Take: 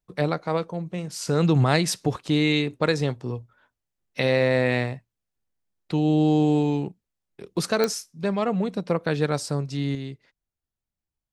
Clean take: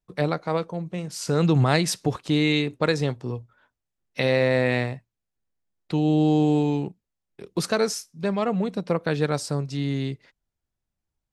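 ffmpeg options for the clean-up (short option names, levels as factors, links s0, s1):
-af "adeclick=t=4,asetnsamples=n=441:p=0,asendcmd='9.95 volume volume 6dB',volume=1"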